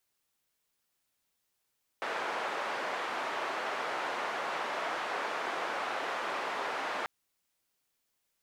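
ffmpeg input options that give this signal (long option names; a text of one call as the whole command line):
ffmpeg -f lavfi -i "anoisesrc=color=white:duration=5.04:sample_rate=44100:seed=1,highpass=frequency=520,lowpass=frequency=1300,volume=-16.3dB" out.wav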